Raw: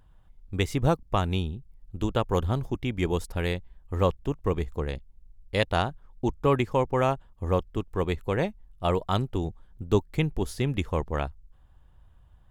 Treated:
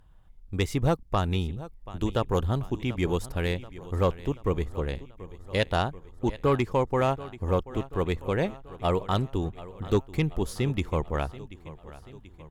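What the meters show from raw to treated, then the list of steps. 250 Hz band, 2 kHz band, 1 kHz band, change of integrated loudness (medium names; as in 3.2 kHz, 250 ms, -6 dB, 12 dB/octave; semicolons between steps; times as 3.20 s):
0.0 dB, -0.5 dB, -1.0 dB, -0.5 dB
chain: feedback delay 734 ms, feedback 57%, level -18 dB; sine folder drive 3 dB, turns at -7.5 dBFS; trim -6.5 dB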